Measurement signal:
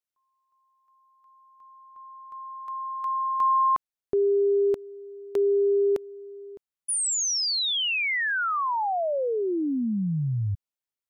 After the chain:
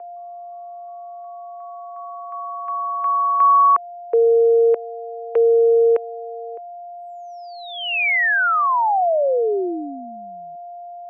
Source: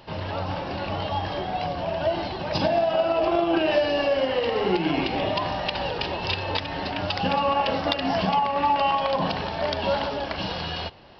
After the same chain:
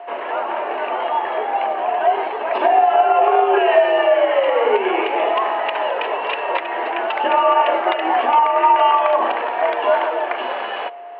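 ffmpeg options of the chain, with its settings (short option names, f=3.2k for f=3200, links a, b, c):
-af "aeval=exprs='val(0)+0.00891*sin(2*PI*640*n/s)':c=same,highpass=f=330:t=q:w=0.5412,highpass=f=330:t=q:w=1.307,lowpass=f=2.5k:t=q:w=0.5176,lowpass=f=2.5k:t=q:w=0.7071,lowpass=f=2.5k:t=q:w=1.932,afreqshift=60,volume=8.5dB"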